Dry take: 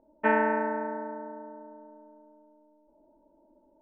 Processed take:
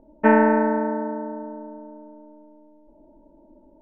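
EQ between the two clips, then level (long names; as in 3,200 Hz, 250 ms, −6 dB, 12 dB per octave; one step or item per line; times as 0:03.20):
low-pass filter 2,000 Hz 6 dB per octave
low-shelf EQ 270 Hz +12 dB
+6.0 dB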